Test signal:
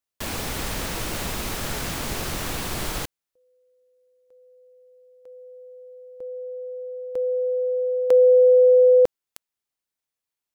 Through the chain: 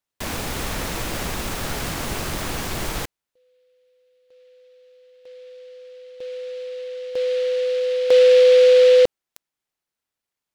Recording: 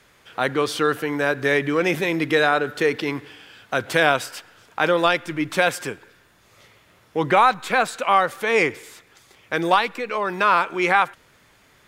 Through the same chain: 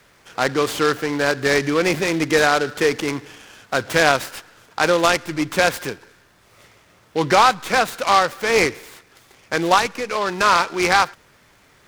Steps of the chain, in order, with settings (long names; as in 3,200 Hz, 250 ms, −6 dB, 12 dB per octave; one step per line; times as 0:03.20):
short delay modulated by noise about 2,800 Hz, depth 0.04 ms
level +2 dB